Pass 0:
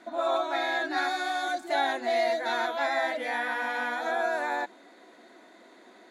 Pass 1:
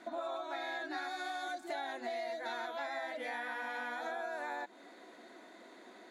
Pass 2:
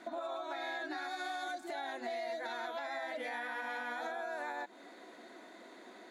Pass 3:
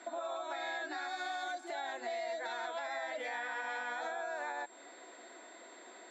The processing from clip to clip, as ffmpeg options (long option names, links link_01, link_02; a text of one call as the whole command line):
ffmpeg -i in.wav -af "acompressor=threshold=-36dB:ratio=6,volume=-1.5dB" out.wav
ffmpeg -i in.wav -af "alimiter=level_in=8.5dB:limit=-24dB:level=0:latency=1:release=90,volume=-8.5dB,volume=1.5dB" out.wav
ffmpeg -i in.wav -filter_complex "[0:a]aeval=exprs='val(0)+0.00158*sin(2*PI*7500*n/s)':channel_layout=same,acrossover=split=330 7700:gain=0.178 1 0.0891[link_01][link_02][link_03];[link_01][link_02][link_03]amix=inputs=3:normalize=0,volume=1dB" out.wav